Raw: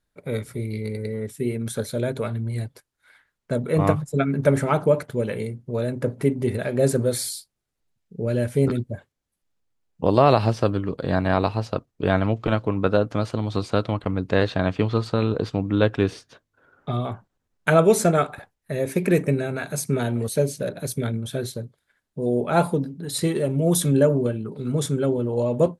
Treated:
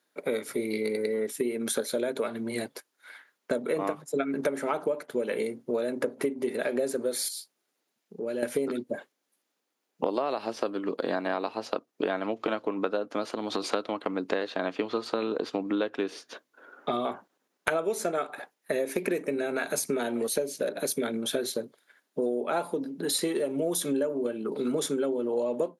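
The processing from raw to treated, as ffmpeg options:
-filter_complex "[0:a]asettb=1/sr,asplit=3[a][b][c];[a]atrim=end=7.284[d];[b]atrim=start=7.28:end=8.43,asetpts=PTS-STARTPTS,afade=t=in:d=0.004:c=qsin,afade=t=out:st=1.146:d=0.004:c=qsin,acompressor=threshold=-42dB:ratio=2:attack=3.2:release=140:knee=1:detection=peak[e];[c]atrim=start=8.426[f];[d][e]acrossfade=d=0.004:c1=hsin:c2=qsin[g];[g][f]acrossfade=d=0.004:c1=qsin:c2=hsin,asettb=1/sr,asplit=3[h][i][j];[h]atrim=end=13.304[k];[i]atrim=start=13.3:end=13.74,asetpts=PTS-STARTPTS,afade=t=in:d=0.004:c=qsin,afade=t=out:st=0.436:d=0.004:c=qsin,acompressor=threshold=-26dB:ratio=6:attack=3.2:release=140:knee=1:detection=peak[l];[j]atrim=start=13.736[m];[k][l]acrossfade=d=0.004:c1=hsin:c2=qsin[n];[n][m]acrossfade=d=0.004:c1=qsin:c2=hsin,highpass=f=260:w=0.5412,highpass=f=260:w=1.3066,acompressor=threshold=-32dB:ratio=12,bandreject=f=8k:w=10,volume=7dB"

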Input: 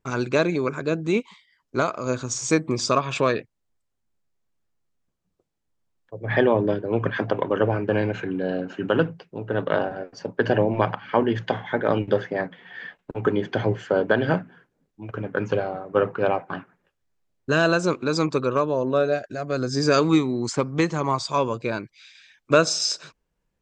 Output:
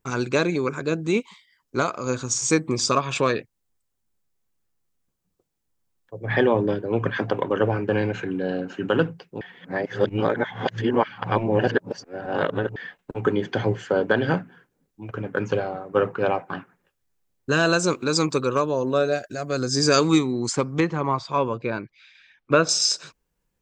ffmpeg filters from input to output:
-filter_complex "[0:a]asettb=1/sr,asplit=3[a][b][c];[a]atrim=end=17.674[d];[b]atrim=start=17.67:end=20.19,asetpts=PTS-STARTPTS,afade=t=in:d=0.004:c=qsin,afade=t=out:st=2.516:d=0.004:c=qsin,highshelf=f=5.6k:g=7.5[e];[c]atrim=start=20.186[f];[d][e]acrossfade=d=0.004:c1=hsin:c2=qsin[g];[g][f]acrossfade=d=0.004:c1=qsin:c2=hsin,asettb=1/sr,asplit=3[h][i][j];[h]atrim=end=20.804[k];[i]atrim=start=20.8:end=22.69,asetpts=PTS-STARTPTS,afade=t=in:d=0.004:c=qsin,afade=t=out:st=1.886:d=0.004:c=qsin,lowpass=2.7k[l];[j]atrim=start=22.686[m];[k][l]acrossfade=d=0.004:c1=hsin:c2=qsin[n];[n][m]acrossfade=d=0.004:c1=qsin:c2=hsin,asplit=3[o][p][q];[o]atrim=end=9.412[r];[p]atrim=start=9.408:end=12.762,asetpts=PTS-STARTPTS,areverse[s];[q]atrim=start=12.758[t];[r][s]acrossfade=d=0.004:c1=hsin:c2=hsin[u];[u][t]acrossfade=d=0.004:c1=hsin:c2=hsin,highshelf=f=7.8k:g=10.5,bandreject=f=630:w=12"

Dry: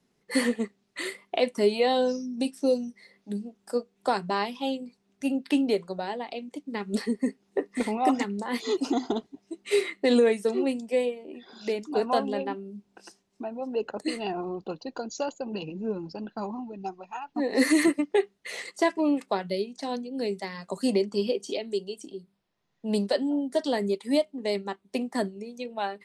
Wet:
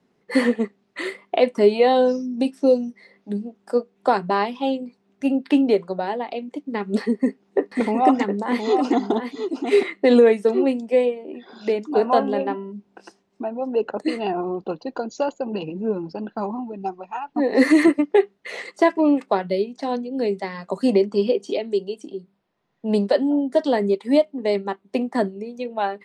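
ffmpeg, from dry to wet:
-filter_complex "[0:a]asettb=1/sr,asplit=3[a][b][c];[a]atrim=end=7.004[d];[b]atrim=start=7:end=9.83,asetpts=PTS-STARTPTS,afade=t=in:d=0.004:c=qsin,afade=t=out:st=2.826:d=0.004:c=qsin,aecho=1:1:714:0.422,atrim=end_sample=124803[e];[c]atrim=start=9.826[f];[d][e]acrossfade=d=0.004:c1=hsin:c2=qsin[g];[g][f]acrossfade=d=0.004:c1=qsin:c2=hsin,asettb=1/sr,asplit=3[h][i][j];[h]atrim=end=11.874[k];[i]atrim=start=11.87:end=12.72,asetpts=PTS-STARTPTS,afade=t=in:d=0.004:c=qsin,afade=t=out:st=0.846:d=0.004:c=qsin,bandreject=f=123.4:t=h:w=4,bandreject=f=246.8:t=h:w=4,bandreject=f=370.2:t=h:w=4,bandreject=f=493.6:t=h:w=4,bandreject=f=617:t=h:w=4,bandreject=f=740.4:t=h:w=4,bandreject=f=863.8:t=h:w=4,bandreject=f=987.2:t=h:w=4,bandreject=f=1.1106k:t=h:w=4,bandreject=f=1.234k:t=h:w=4,bandreject=f=1.3574k:t=h:w=4,bandreject=f=1.4808k:t=h:w=4,bandreject=f=1.6042k:t=h:w=4,bandreject=f=1.7276k:t=h:w=4,bandreject=f=1.851k:t=h:w=4,bandreject=f=1.9744k:t=h:w=4,bandreject=f=2.0978k:t=h:w=4,bandreject=f=2.2212k:t=h:w=4,bandreject=f=2.3446k:t=h:w=4,bandreject=f=2.468k:t=h:w=4,bandreject=f=2.5914k:t=h:w=4,bandreject=f=2.7148k:t=h:w=4,bandreject=f=2.8382k:t=h:w=4,bandreject=f=2.9616k:t=h:w=4,bandreject=f=3.085k:t=h:w=4[l];[j]atrim=start=12.716[m];[k][l]acrossfade=d=0.004:c1=hsin:c2=qsin[n];[n][m]acrossfade=d=0.004:c1=qsin:c2=hsin,lowpass=f=1.6k:p=1,lowshelf=f=110:g=-11.5,volume=8.5dB"

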